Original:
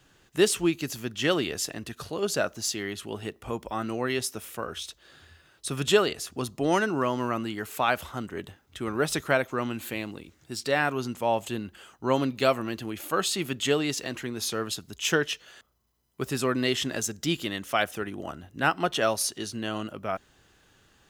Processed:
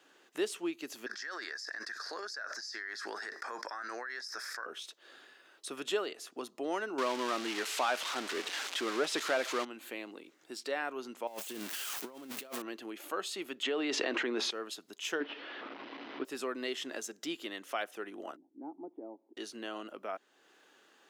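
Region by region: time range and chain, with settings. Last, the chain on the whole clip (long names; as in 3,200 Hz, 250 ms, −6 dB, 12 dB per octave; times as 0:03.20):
0:01.06–0:04.66: pair of resonant band-passes 2,900 Hz, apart 1.6 octaves + envelope flattener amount 100%
0:06.98–0:09.65: spike at every zero crossing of −15 dBFS + low-pass filter 4,500 Hz + leveller curve on the samples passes 2
0:11.27–0:12.62: spike at every zero crossing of −17 dBFS + bass and treble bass +8 dB, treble −3 dB + compressor whose output falls as the input rises −29 dBFS, ratio −0.5
0:13.63–0:14.51: band-pass filter 180–3,500 Hz + envelope flattener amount 100%
0:15.20–0:16.25: linear delta modulator 32 kbit/s, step −31.5 dBFS + low-pass filter 3,400 Hz 24 dB per octave + parametric band 280 Hz +13 dB 0.39 octaves
0:18.36–0:19.37: formant resonators in series u + high-shelf EQ 2,100 Hz −12 dB
whole clip: high-pass filter 290 Hz 24 dB per octave; high-shelf EQ 4,900 Hz −7 dB; downward compressor 1.5 to 1, threshold −50 dBFS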